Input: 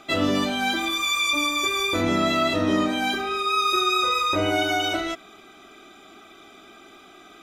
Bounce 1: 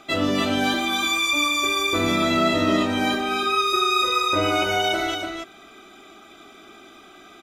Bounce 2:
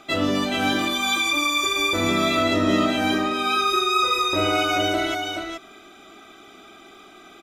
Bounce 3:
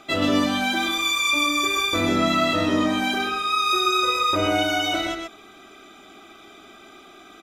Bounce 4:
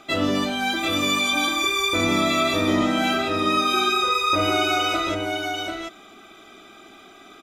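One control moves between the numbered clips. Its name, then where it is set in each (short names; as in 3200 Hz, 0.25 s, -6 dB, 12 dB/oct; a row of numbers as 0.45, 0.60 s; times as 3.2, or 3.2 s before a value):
echo, time: 0.29, 0.427, 0.126, 0.741 s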